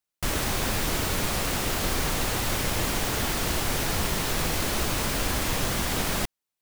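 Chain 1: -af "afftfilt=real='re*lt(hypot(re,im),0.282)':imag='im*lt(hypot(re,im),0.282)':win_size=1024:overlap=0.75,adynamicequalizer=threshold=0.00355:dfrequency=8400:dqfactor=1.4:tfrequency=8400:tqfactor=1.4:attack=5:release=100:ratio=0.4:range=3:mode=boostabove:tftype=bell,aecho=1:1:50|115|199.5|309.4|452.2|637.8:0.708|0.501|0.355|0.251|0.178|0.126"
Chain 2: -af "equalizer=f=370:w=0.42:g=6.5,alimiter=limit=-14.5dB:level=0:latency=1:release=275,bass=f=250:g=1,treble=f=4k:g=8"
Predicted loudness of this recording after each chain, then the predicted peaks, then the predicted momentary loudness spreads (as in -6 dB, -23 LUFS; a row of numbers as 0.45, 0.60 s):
-22.5, -22.0 LUFS; -10.0, -11.0 dBFS; 0, 1 LU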